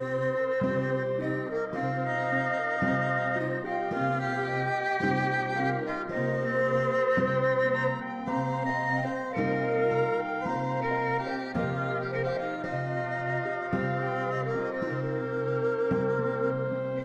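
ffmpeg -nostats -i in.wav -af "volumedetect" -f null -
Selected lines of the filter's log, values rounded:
mean_volume: -28.5 dB
max_volume: -13.8 dB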